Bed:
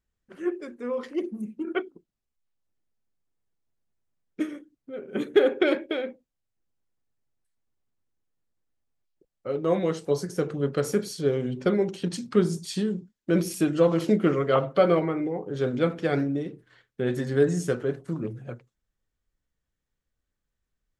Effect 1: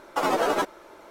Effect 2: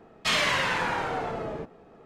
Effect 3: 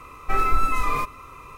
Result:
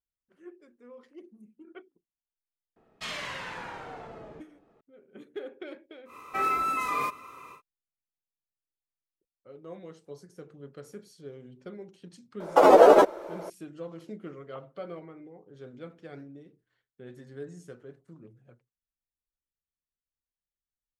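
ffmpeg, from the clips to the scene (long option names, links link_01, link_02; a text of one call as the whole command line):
ffmpeg -i bed.wav -i cue0.wav -i cue1.wav -i cue2.wav -filter_complex "[0:a]volume=-19.5dB[link_01];[3:a]highpass=210[link_02];[1:a]equalizer=frequency=520:width=0.76:gain=15[link_03];[2:a]atrim=end=2.05,asetpts=PTS-STARTPTS,volume=-12dB,afade=type=in:duration=0.004:curve=hsin,afade=type=out:start_time=2.046:duration=0.004:curve=hsin,adelay=2760[link_04];[link_02]atrim=end=1.57,asetpts=PTS-STARTPTS,volume=-3.5dB,afade=type=in:duration=0.1,afade=type=out:start_time=1.47:duration=0.1,adelay=6050[link_05];[link_03]atrim=end=1.1,asetpts=PTS-STARTPTS,volume=-2.5dB,afade=type=in:duration=0.004:curve=hsin,afade=type=out:start_time=1.096:duration=0.004:curve=hsin,adelay=12400[link_06];[link_01][link_04][link_05][link_06]amix=inputs=4:normalize=0" out.wav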